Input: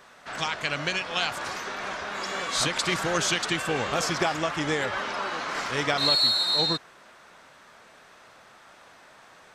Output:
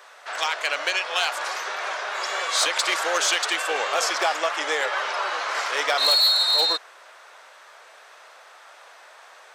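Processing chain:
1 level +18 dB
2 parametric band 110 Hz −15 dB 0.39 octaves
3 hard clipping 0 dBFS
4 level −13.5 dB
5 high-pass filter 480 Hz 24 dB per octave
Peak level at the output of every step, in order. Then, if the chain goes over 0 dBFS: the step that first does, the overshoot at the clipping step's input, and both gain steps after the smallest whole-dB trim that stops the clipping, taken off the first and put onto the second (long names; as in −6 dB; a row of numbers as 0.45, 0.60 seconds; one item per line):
+8.0, +8.5, 0.0, −13.5, −9.0 dBFS
step 1, 8.5 dB
step 1 +9 dB, step 4 −4.5 dB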